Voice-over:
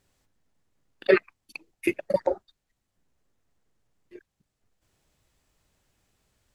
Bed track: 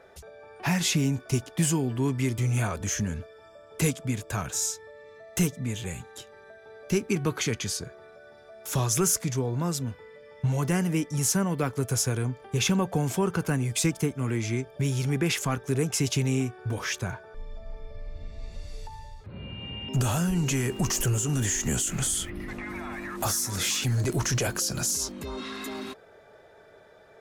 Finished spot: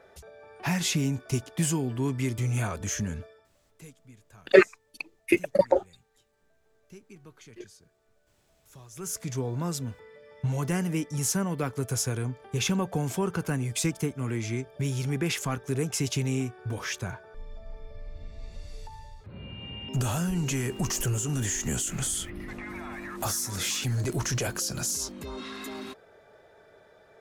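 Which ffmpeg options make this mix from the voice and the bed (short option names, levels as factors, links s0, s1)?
-filter_complex "[0:a]adelay=3450,volume=1.41[s0];[1:a]volume=8.91,afade=t=out:st=3.26:d=0.23:silence=0.0841395,afade=t=in:st=8.93:d=0.48:silence=0.0891251[s1];[s0][s1]amix=inputs=2:normalize=0"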